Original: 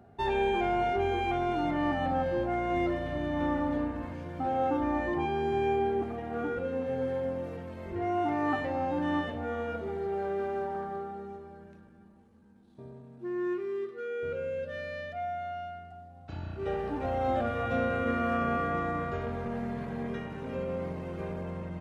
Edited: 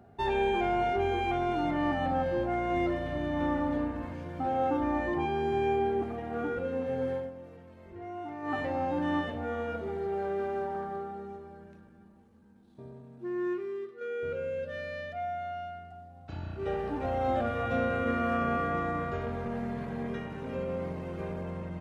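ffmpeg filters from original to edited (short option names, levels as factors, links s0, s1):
-filter_complex "[0:a]asplit=4[s0][s1][s2][s3];[s0]atrim=end=7.31,asetpts=PTS-STARTPTS,afade=t=out:st=7.13:d=0.18:silence=0.298538[s4];[s1]atrim=start=7.31:end=8.42,asetpts=PTS-STARTPTS,volume=0.299[s5];[s2]atrim=start=8.42:end=14.01,asetpts=PTS-STARTPTS,afade=t=in:d=0.18:silence=0.298538,afade=t=out:st=5.06:d=0.53:silence=0.473151[s6];[s3]atrim=start=14.01,asetpts=PTS-STARTPTS,afade=t=in:d=0.004:c=hsin:silence=0.473151[s7];[s4][s5][s6][s7]concat=n=4:v=0:a=1"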